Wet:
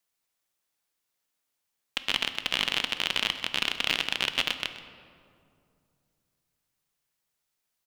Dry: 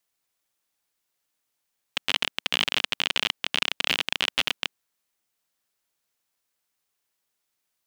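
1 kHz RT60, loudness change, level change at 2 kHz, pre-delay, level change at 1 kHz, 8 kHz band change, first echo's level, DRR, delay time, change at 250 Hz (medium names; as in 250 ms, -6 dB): 2.3 s, -2.0 dB, -2.0 dB, 3 ms, -2.0 dB, -2.0 dB, -15.5 dB, 9.0 dB, 128 ms, -1.5 dB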